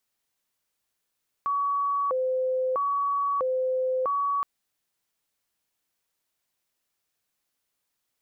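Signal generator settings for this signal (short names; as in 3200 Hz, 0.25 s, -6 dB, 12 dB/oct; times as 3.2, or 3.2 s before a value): siren hi-lo 515–1130 Hz 0.77/s sine -23 dBFS 2.97 s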